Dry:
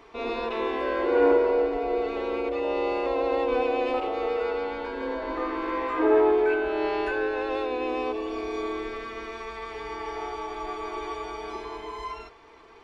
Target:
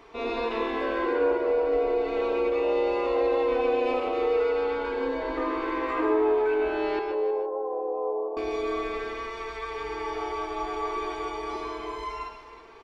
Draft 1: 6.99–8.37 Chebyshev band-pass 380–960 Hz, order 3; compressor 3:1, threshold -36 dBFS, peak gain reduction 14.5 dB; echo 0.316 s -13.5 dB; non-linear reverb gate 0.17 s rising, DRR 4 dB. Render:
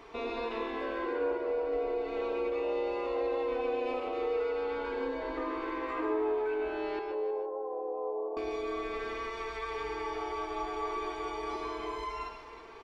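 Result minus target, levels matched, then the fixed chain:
compressor: peak gain reduction +7.5 dB
6.99–8.37 Chebyshev band-pass 380–960 Hz, order 3; compressor 3:1, threshold -24.5 dBFS, peak gain reduction 7 dB; echo 0.316 s -13.5 dB; non-linear reverb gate 0.17 s rising, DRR 4 dB

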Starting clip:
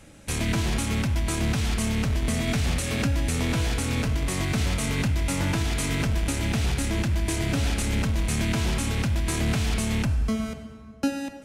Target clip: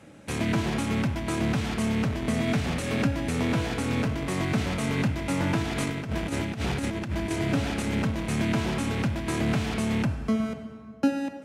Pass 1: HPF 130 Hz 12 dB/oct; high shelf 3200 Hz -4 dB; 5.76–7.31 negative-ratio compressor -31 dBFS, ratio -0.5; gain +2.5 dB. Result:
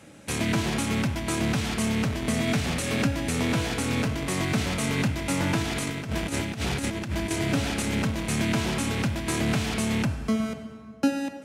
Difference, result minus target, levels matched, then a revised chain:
8000 Hz band +6.0 dB
HPF 130 Hz 12 dB/oct; high shelf 3200 Hz -12 dB; 5.76–7.31 negative-ratio compressor -31 dBFS, ratio -0.5; gain +2.5 dB

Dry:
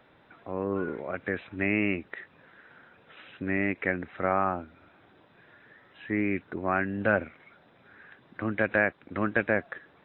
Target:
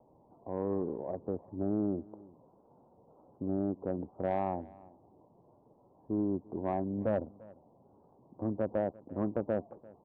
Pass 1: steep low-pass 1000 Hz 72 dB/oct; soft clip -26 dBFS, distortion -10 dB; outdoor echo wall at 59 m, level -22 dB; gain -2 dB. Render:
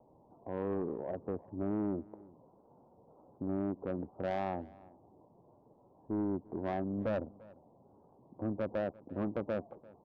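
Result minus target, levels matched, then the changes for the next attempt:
soft clip: distortion +7 dB
change: soft clip -19.5 dBFS, distortion -17 dB

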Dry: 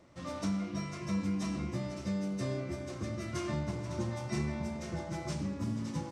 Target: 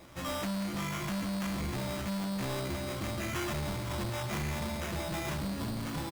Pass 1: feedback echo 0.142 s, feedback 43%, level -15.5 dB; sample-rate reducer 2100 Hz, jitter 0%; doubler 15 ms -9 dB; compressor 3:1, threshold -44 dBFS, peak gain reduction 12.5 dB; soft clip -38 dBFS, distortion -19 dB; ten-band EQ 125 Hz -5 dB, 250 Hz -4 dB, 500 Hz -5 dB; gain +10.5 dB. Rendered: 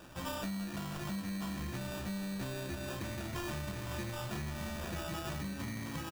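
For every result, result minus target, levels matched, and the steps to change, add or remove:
compressor: peak gain reduction +12.5 dB; sample-rate reducer: distortion +4 dB
remove: compressor 3:1, threshold -44 dBFS, peak gain reduction 12.5 dB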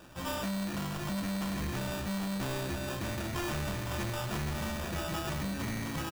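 sample-rate reducer: distortion +4 dB
change: sample-rate reducer 4400 Hz, jitter 0%

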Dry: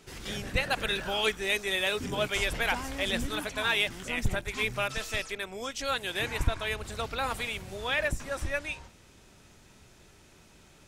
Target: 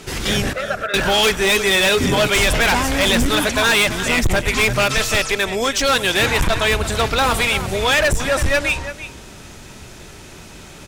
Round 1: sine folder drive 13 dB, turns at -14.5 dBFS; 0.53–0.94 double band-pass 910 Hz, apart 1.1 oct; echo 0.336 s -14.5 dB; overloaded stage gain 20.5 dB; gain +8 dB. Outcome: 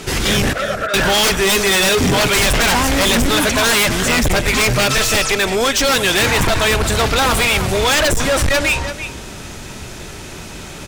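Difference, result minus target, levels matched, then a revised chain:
sine folder: distortion +10 dB
sine folder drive 6 dB, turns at -14.5 dBFS; 0.53–0.94 double band-pass 910 Hz, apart 1.1 oct; echo 0.336 s -14.5 dB; overloaded stage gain 20.5 dB; gain +8 dB

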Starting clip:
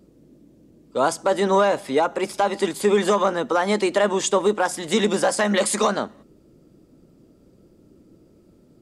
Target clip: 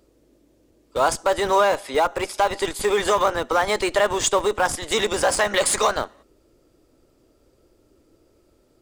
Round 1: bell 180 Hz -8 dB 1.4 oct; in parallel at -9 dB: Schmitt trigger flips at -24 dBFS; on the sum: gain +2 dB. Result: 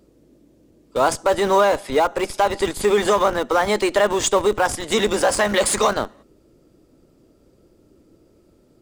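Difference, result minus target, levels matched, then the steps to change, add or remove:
250 Hz band +4.0 dB
change: bell 180 Hz -19.5 dB 1.4 oct

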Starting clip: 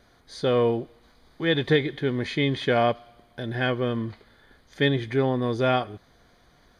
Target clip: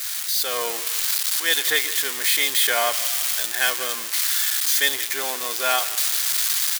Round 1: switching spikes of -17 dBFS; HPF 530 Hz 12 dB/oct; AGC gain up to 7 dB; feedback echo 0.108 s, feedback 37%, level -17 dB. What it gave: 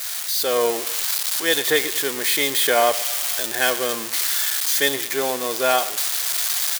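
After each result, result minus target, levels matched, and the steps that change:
500 Hz band +9.0 dB; echo 62 ms early
change: HPF 1100 Hz 12 dB/oct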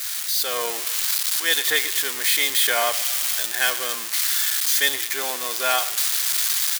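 echo 62 ms early
change: feedback echo 0.17 s, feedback 37%, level -17 dB

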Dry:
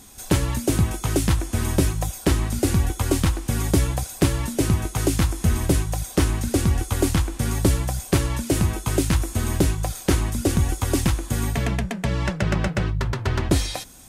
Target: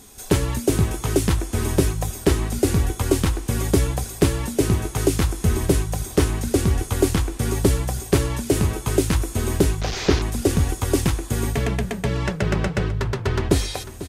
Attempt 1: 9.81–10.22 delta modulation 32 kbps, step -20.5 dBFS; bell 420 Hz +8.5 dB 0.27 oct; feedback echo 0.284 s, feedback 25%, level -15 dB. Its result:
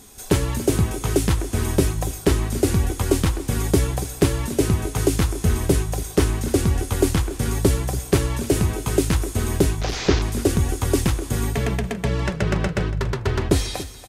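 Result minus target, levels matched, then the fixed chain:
echo 0.212 s early
9.81–10.22 delta modulation 32 kbps, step -20.5 dBFS; bell 420 Hz +8.5 dB 0.27 oct; feedback echo 0.496 s, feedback 25%, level -15 dB

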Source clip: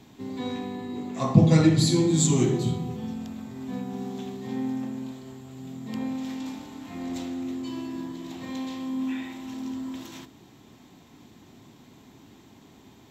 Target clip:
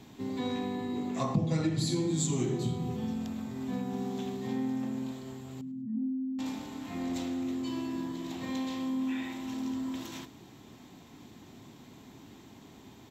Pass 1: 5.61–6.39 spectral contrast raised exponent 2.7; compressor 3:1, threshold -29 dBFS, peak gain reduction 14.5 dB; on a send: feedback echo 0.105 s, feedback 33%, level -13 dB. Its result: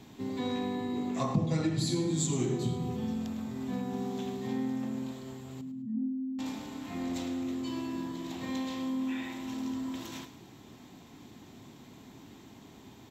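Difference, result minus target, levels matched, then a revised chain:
echo-to-direct +8.5 dB
5.61–6.39 spectral contrast raised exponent 2.7; compressor 3:1, threshold -29 dBFS, peak gain reduction 14.5 dB; on a send: feedback echo 0.105 s, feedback 33%, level -21.5 dB

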